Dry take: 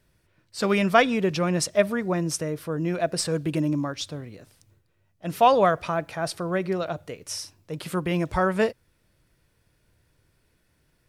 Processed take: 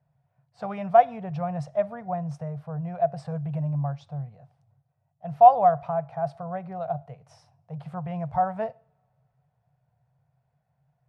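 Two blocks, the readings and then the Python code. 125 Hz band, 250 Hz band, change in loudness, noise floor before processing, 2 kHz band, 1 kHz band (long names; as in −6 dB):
−1.0 dB, −8.5 dB, −0.5 dB, −68 dBFS, below −10 dB, +4.0 dB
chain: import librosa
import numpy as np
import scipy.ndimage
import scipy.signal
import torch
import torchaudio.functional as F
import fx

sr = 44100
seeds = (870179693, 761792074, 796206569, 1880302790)

y = fx.double_bandpass(x, sr, hz=320.0, octaves=2.4)
y = fx.rev_double_slope(y, sr, seeds[0], early_s=0.45, late_s=2.6, knee_db=-26, drr_db=20.0)
y = F.gain(torch.from_numpy(y), 7.5).numpy()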